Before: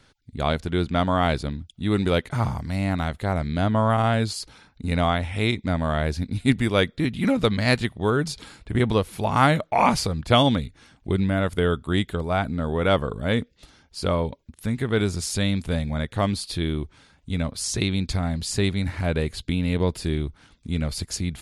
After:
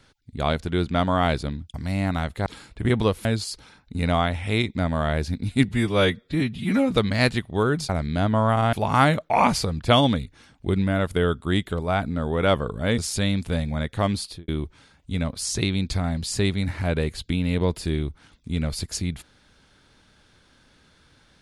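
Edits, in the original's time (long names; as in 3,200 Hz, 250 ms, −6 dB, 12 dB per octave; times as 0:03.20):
0:01.74–0:02.58: remove
0:03.30–0:04.14: swap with 0:08.36–0:09.15
0:06.54–0:07.38: time-stretch 1.5×
0:13.40–0:15.17: remove
0:16.42–0:16.67: fade out and dull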